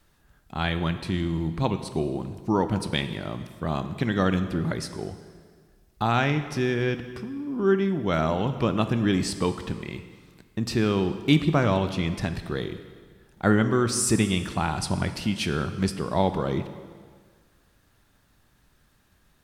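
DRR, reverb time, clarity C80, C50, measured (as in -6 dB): 9.0 dB, 1.7 s, 12.0 dB, 11.0 dB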